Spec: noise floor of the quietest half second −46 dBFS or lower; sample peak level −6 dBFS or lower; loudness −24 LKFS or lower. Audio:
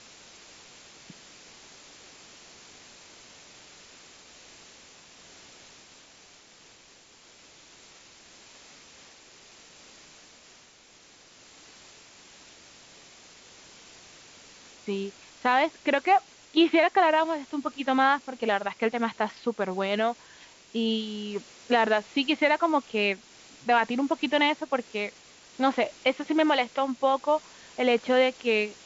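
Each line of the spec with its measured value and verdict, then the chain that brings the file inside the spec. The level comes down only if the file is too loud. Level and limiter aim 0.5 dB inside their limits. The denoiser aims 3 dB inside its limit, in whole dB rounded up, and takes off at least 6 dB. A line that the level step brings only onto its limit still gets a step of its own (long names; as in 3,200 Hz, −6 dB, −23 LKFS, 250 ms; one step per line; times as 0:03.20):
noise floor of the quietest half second −55 dBFS: in spec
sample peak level −10.0 dBFS: in spec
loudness −26.0 LKFS: in spec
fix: no processing needed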